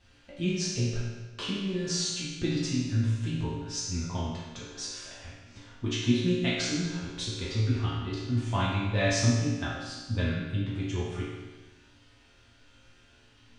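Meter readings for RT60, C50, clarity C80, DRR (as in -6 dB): 1.3 s, -1.0 dB, 2.0 dB, -8.5 dB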